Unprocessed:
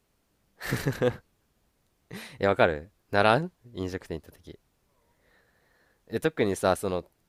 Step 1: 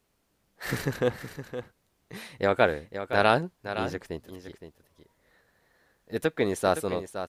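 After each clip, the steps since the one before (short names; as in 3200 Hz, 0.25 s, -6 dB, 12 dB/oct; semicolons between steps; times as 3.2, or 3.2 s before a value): low shelf 160 Hz -3.5 dB; on a send: echo 0.515 s -10.5 dB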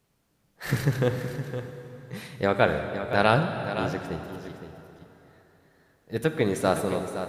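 bell 140 Hz +9 dB 0.72 oct; plate-style reverb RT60 3.4 s, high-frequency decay 0.8×, DRR 7 dB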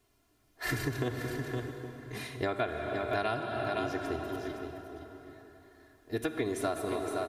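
comb 2.9 ms, depth 100%; compressor 6:1, threshold -27 dBFS, peak gain reduction 14.5 dB; outdoor echo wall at 140 m, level -14 dB; gain -2 dB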